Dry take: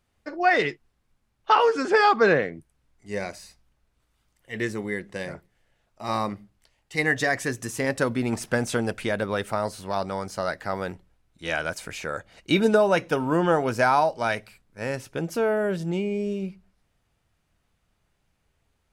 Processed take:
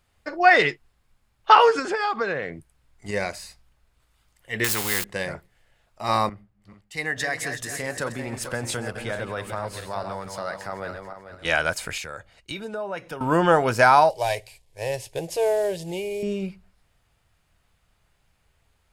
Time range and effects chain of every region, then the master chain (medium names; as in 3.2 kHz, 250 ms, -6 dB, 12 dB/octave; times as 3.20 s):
1.79–3.11 s: transient shaper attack +8 dB, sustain 0 dB + compression 4:1, threshold -28 dBFS
4.64–5.04 s: zero-crossing glitches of -32 dBFS + peaking EQ 620 Hz -12.5 dB 0.3 oct + spectrum-flattening compressor 2:1
6.29–11.45 s: backward echo that repeats 220 ms, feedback 53%, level -7.5 dB + compression 2:1, threshold -36 dBFS + three bands expanded up and down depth 70%
11.98–13.21 s: compression 4:1, threshold -35 dBFS + three bands expanded up and down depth 100%
14.10–16.23 s: CVSD coder 64 kbps + de-esser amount 30% + static phaser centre 560 Hz, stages 4
whole clip: peaking EQ 260 Hz -6.5 dB 1.7 oct; band-stop 5.9 kHz, Q 15; trim +6 dB